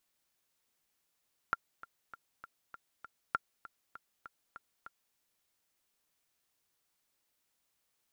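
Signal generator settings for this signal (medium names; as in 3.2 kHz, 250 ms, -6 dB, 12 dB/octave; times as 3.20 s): metronome 198 bpm, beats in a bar 6, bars 2, 1.38 kHz, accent 18 dB -16.5 dBFS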